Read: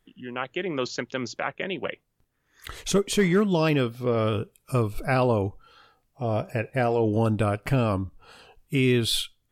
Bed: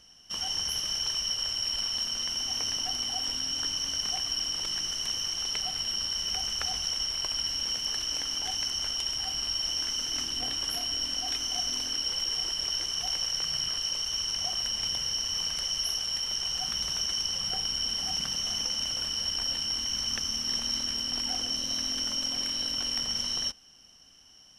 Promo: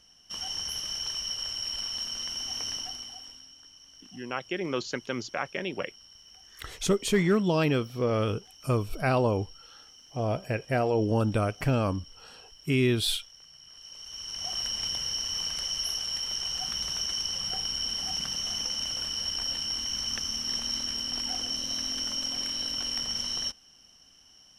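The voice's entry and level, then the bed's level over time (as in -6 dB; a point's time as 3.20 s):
3.95 s, -2.5 dB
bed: 2.75 s -3 dB
3.59 s -22 dB
13.60 s -22 dB
14.56 s -1 dB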